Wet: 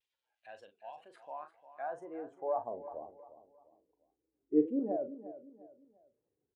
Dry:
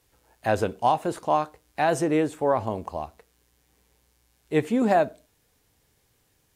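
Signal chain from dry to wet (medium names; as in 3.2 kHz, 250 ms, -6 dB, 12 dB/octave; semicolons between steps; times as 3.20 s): spectral contrast enhancement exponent 1.6; 2.96–4.80 s: peaking EQ 300 Hz +11.5 dB 0.46 oct; band-pass sweep 3.1 kHz -> 400 Hz, 0.82–3.15 s; wow and flutter 140 cents; doubling 40 ms -9.5 dB; on a send: feedback delay 351 ms, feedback 35%, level -14 dB; on the sum: trim -7.5 dB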